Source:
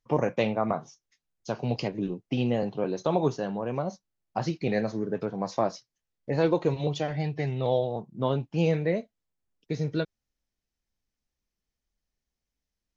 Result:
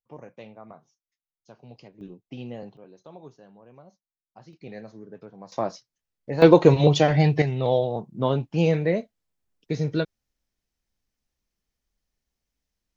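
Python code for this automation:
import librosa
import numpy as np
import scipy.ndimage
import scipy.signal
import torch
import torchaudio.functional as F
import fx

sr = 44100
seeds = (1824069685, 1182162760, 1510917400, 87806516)

y = fx.gain(x, sr, db=fx.steps((0.0, -18.0), (2.01, -10.5), (2.77, -20.0), (4.53, -13.0), (5.52, -1.0), (6.42, 11.0), (7.42, 3.5)))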